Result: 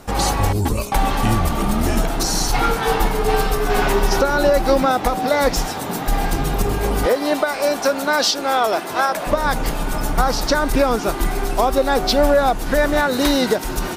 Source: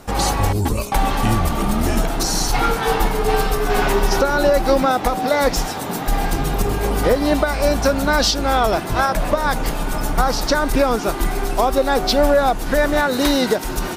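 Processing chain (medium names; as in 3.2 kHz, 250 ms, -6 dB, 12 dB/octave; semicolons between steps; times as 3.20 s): 7.06–9.27 s: high-pass 320 Hz 12 dB/octave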